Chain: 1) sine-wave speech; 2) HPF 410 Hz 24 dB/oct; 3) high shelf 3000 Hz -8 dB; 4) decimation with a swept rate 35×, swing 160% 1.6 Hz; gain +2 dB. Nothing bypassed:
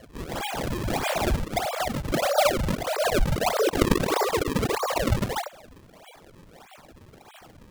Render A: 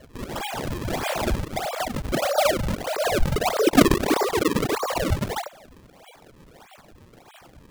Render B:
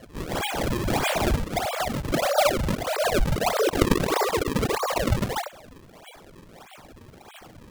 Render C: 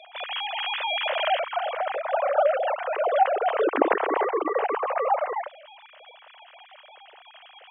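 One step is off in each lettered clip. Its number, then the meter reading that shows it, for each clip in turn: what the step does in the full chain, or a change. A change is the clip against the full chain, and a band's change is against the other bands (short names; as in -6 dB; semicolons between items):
2, 250 Hz band +3.0 dB; 3, momentary loudness spread change -1 LU; 4, 250 Hz band -8.5 dB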